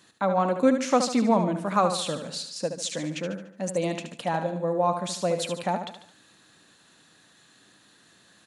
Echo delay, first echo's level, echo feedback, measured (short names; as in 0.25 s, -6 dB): 73 ms, -8.0 dB, 45%